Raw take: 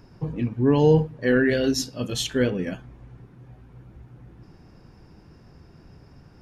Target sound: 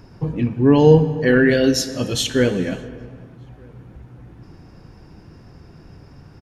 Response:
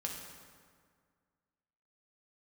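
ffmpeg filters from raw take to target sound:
-filter_complex "[0:a]asplit=2[link_01][link_02];[link_02]adelay=1224,volume=-30dB,highshelf=frequency=4000:gain=-27.6[link_03];[link_01][link_03]amix=inputs=2:normalize=0,asplit=2[link_04][link_05];[1:a]atrim=start_sample=2205,afade=type=out:start_time=0.39:duration=0.01,atrim=end_sample=17640,asetrate=24255,aresample=44100[link_06];[link_05][link_06]afir=irnorm=-1:irlink=0,volume=-12dB[link_07];[link_04][link_07]amix=inputs=2:normalize=0,volume=3.5dB"

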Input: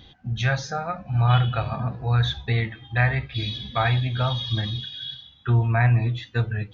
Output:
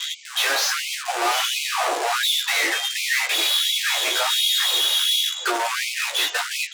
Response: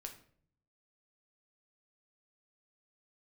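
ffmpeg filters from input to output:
-filter_complex "[0:a]adynamicequalizer=threshold=0.00891:dfrequency=740:dqfactor=2.3:tfrequency=740:tqfactor=2.3:attack=5:release=100:ratio=0.375:range=2:mode=boostabove:tftype=bell,asplit=2[link_01][link_02];[link_02]asetrate=37084,aresample=44100,atempo=1.18921,volume=-17dB[link_03];[link_01][link_03]amix=inputs=2:normalize=0,acrossover=split=400|2400[link_04][link_05][link_06];[link_06]acontrast=43[link_07];[link_04][link_05][link_07]amix=inputs=3:normalize=0,asplit=2[link_08][link_09];[link_09]highpass=frequency=720:poles=1,volume=35dB,asoftclip=type=tanh:threshold=-6dB[link_10];[link_08][link_10]amix=inputs=2:normalize=0,lowpass=frequency=2800:poles=1,volume=-6dB,aresample=16000,acrusher=bits=4:dc=4:mix=0:aa=0.000001,aresample=44100,asoftclip=type=hard:threshold=-20.5dB,asplit=2[link_11][link_12];[link_12]adelay=14,volume=-4dB[link_13];[link_11][link_13]amix=inputs=2:normalize=0,afftfilt=real='re*gte(b*sr/1024,290*pow(2100/290,0.5+0.5*sin(2*PI*1.4*pts/sr)))':imag='im*gte(b*sr/1024,290*pow(2100/290,0.5+0.5*sin(2*PI*1.4*pts/sr)))':win_size=1024:overlap=0.75"

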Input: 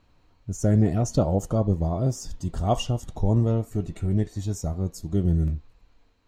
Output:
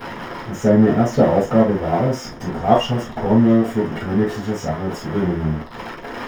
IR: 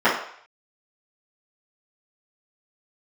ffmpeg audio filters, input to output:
-filter_complex "[0:a]aeval=exprs='val(0)+0.5*0.0422*sgn(val(0))':channel_layout=same[link_01];[1:a]atrim=start_sample=2205,atrim=end_sample=3087[link_02];[link_01][link_02]afir=irnorm=-1:irlink=0,volume=-12.5dB"

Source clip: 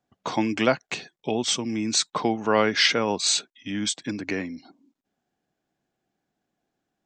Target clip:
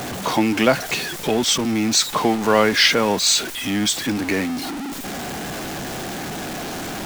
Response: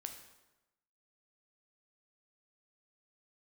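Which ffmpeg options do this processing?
-af "aeval=exprs='val(0)+0.5*0.0501*sgn(val(0))':channel_layout=same,volume=3.5dB"

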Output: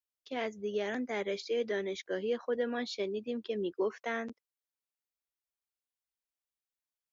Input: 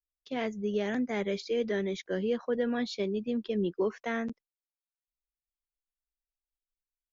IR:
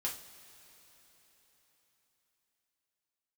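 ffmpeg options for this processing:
-af "highpass=94,equalizer=frequency=170:width=1.5:gain=-11.5,volume=-1dB"

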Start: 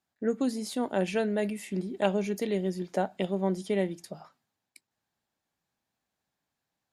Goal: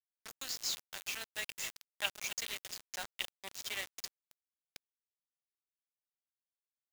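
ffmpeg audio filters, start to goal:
ffmpeg -i in.wav -filter_complex "[0:a]highshelf=frequency=5400:gain=8.5,asplit=3[link_01][link_02][link_03];[link_01]afade=type=out:start_time=0.56:duration=0.02[link_04];[link_02]acompressor=threshold=-31dB:ratio=5,afade=type=in:start_time=0.56:duration=0.02,afade=type=out:start_time=1.2:duration=0.02[link_05];[link_03]afade=type=in:start_time=1.2:duration=0.02[link_06];[link_04][link_05][link_06]amix=inputs=3:normalize=0,asuperpass=centerf=5100:order=4:qfactor=0.58,asplit=2[link_07][link_08];[link_08]aecho=0:1:269:0.251[link_09];[link_07][link_09]amix=inputs=2:normalize=0,aresample=16000,aresample=44100,acrusher=bits=6:mix=0:aa=0.000001,volume=3dB" out.wav

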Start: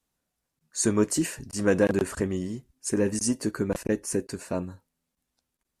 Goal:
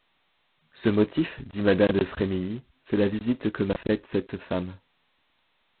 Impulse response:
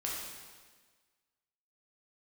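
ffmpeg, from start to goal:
-filter_complex "[0:a]asettb=1/sr,asplit=3[link_01][link_02][link_03];[link_01]atrim=end=0.964[link_04];[link_02]atrim=start=0.96:end=2.15,asetpts=PTS-STARTPTS,afade=type=in:duration=0.004:curve=qsin,afade=type=out:start_time=1.186:duration=0.004:curve=qsin,adynamicequalizer=threshold=0.00891:dfrequency=1600:dqfactor=1.6:tfrequency=1600:tqfactor=1.6:attack=5:release=100:ratio=0.375:range=1.5:mode=cutabove:tftype=bell[link_05];[link_03]atrim=start=2.146[link_06];[link_04][link_05]acrossfade=duration=0.004:curve1=hsin:curve2=qsin[link_07];[link_07][link_06]acrossfade=duration=0.004:curve1=qsin:curve2=hsin,volume=1.5dB" -ar 8000 -c:a adpcm_g726 -b:a 16k

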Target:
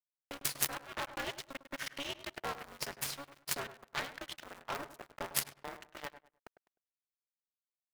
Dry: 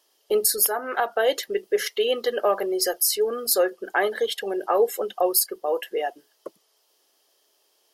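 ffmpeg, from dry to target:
ffmpeg -i in.wav -filter_complex "[0:a]asettb=1/sr,asplit=3[link_01][link_02][link_03];[link_01]atrim=end=1.274[link_04];[link_02]atrim=start=1.27:end=2.11,asetpts=PTS-STARTPTS,afade=type=in:duration=0.004:curve=qsin,afade=type=out:start_time=0.836:duration=0.004:curve=qsin,aecho=1:1:2.4:0.76,atrim=end_sample=37044[link_05];[link_03]atrim=start=2.106[link_06];[link_04][link_05]acrossfade=duration=0.004:curve1=hsin:curve2=qsin[link_07];[link_07][link_06]acrossfade=duration=0.004:curve1=qsin:curve2=hsin,asettb=1/sr,asplit=3[link_08][link_09][link_10];[link_08]atrim=end=5.374[link_11];[link_09]atrim=start=5.37:end=6.05,asetpts=PTS-STARTPTS,afade=type=in:duration=0.004:curve=qsin,afade=type=out:start_time=0.676:duration=0.004:curve=qsin,highpass=frequency=490:poles=1[link_12];[link_10]atrim=start=6.046[link_13];[link_11][link_12]acrossfade=duration=0.004:curve1=hsin:curve2=qsin[link_14];[link_14][link_13]acrossfade=duration=0.004:curve1=qsin:curve2=hsin,acrossover=split=830|7000[link_15][link_16][link_17];[link_15]acompressor=threshold=-29dB:ratio=16[link_18];[link_18][link_16][link_17]amix=inputs=3:normalize=0,aeval=exprs='0.473*(cos(1*acos(clip(val(0)/0.473,-1,1)))-cos(1*PI/2))+0.0531*(cos(2*acos(clip(val(0)/0.473,-1,1)))-cos(2*PI/2))+0.211*(cos(3*acos(clip(val(0)/0.473,-1,1)))-cos(3*PI/2))':channel_layout=same,aeval=exprs='sgn(val(0))*max(abs(val(0))-0.0126,0)':channel_layout=same,asplit=2[link_19][link_20];[link_20]highpass=frequency=720:poles=1,volume=9dB,asoftclip=type=tanh:threshold=-2dB[link_21];[link_19][link_21]amix=inputs=2:normalize=0,lowpass=frequency=3800:poles=1,volume=-6dB,acrusher=bits=9:mix=0:aa=0.000001,asplit=2[link_22][link_23];[link_23]adelay=102,lowpass=frequency=1900:poles=1,volume=-11.5dB,asplit=2[link_24][link_25];[link_25]adelay=102,lowpass=frequency=1900:poles=1,volume=0.27,asplit=2[link_26][link_27];[link_27]adelay=102,lowpass=frequency=1900:poles=1,volume=0.27[link_28];[link_24][link_26][link_28]amix=inputs=3:normalize=0[link_29];[link_22][link_29]amix=inputs=2:normalize=0,aeval=exprs='val(0)*sgn(sin(2*PI*140*n/s))':channel_layout=same,volume=2.5dB" out.wav

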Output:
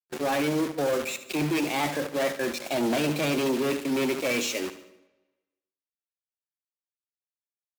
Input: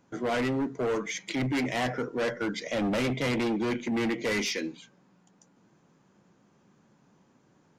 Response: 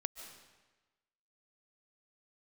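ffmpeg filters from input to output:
-filter_complex "[0:a]acrusher=bits=5:mix=0:aa=0.000001,highpass=frequency=100:poles=1,agate=range=-31dB:threshold=-36dB:ratio=16:detection=peak,asetrate=50951,aresample=44100,atempo=0.865537,aecho=1:1:74|148|222|296|370:0.224|0.107|0.0516|0.0248|0.0119,asplit=2[link_01][link_02];[1:a]atrim=start_sample=2205,highshelf=frequency=4000:gain=-9.5[link_03];[link_02][link_03]afir=irnorm=-1:irlink=0,volume=-12dB[link_04];[link_01][link_04]amix=inputs=2:normalize=0"

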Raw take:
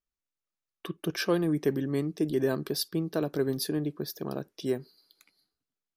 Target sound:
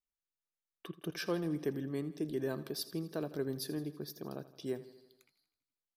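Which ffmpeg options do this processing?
ffmpeg -i in.wav -af "aecho=1:1:82|164|246|328|410|492:0.158|0.0951|0.0571|0.0342|0.0205|0.0123,volume=-8.5dB" out.wav

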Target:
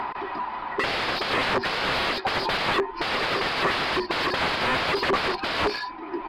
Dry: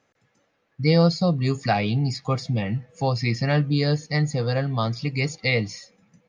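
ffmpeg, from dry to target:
ffmpeg -i in.wav -filter_complex "[0:a]afftfilt=real='real(if(between(b,1,1008),(2*floor((b-1)/24)+1)*24-b,b),0)':imag='imag(if(between(b,1,1008),(2*floor((b-1)/24)+1)*24-b,b),0)*if(between(b,1,1008),-1,1)':win_size=2048:overlap=0.75,equalizer=frequency=950:width=1.9:gain=11,acompressor=mode=upward:threshold=-35dB:ratio=2.5,alimiter=limit=-11.5dB:level=0:latency=1:release=11,acontrast=20,aeval=exprs='(mod(16.8*val(0)+1,2)-1)/16.8':channel_layout=same,aresample=11025,aresample=44100,asplit=2[link_01][link_02];[link_02]highpass=frequency=720:poles=1,volume=16dB,asoftclip=type=tanh:threshold=-19.5dB[link_03];[link_01][link_03]amix=inputs=2:normalize=0,lowpass=frequency=1100:poles=1,volume=-6dB,volume=8dB" -ar 48000 -c:a libmp3lame -b:a 160k out.mp3

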